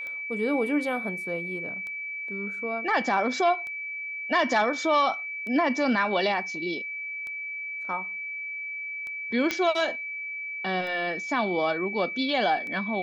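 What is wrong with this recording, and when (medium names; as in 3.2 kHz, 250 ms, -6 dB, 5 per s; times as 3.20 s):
tick 33 1/3 rpm -26 dBFS
whine 2.3 kHz -32 dBFS
9.51 s: pop -12 dBFS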